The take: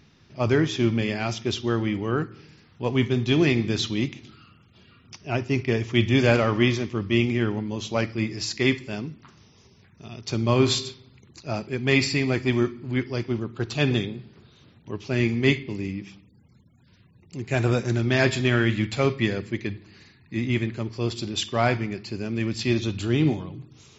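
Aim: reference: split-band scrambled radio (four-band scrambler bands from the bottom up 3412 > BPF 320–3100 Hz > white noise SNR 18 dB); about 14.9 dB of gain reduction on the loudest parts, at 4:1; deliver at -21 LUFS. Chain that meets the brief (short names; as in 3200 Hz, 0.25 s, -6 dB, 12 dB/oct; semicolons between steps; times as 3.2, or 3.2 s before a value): compressor 4:1, threshold -33 dBFS; four-band scrambler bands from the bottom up 3412; BPF 320–3100 Hz; white noise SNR 18 dB; gain +15.5 dB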